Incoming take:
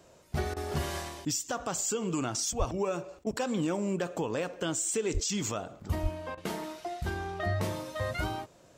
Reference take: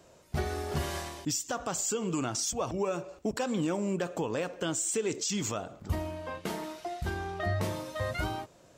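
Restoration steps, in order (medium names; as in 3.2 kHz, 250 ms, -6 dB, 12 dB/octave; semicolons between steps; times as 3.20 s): 2.58–2.70 s: high-pass 140 Hz 24 dB/octave; 5.13–5.25 s: high-pass 140 Hz 24 dB/octave; 6.02–6.14 s: high-pass 140 Hz 24 dB/octave; interpolate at 0.54/3.24/6.35 s, 24 ms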